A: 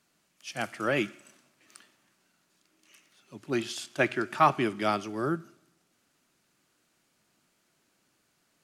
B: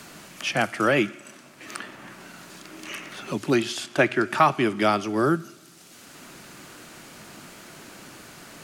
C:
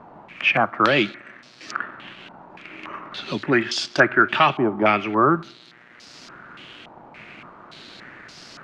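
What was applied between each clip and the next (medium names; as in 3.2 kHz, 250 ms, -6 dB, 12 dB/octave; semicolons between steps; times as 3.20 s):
three bands compressed up and down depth 70%; trim +7.5 dB
mains buzz 120 Hz, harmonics 37, -55 dBFS -1 dB/octave; waveshaping leveller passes 1; step-sequenced low-pass 3.5 Hz 870–5100 Hz; trim -2.5 dB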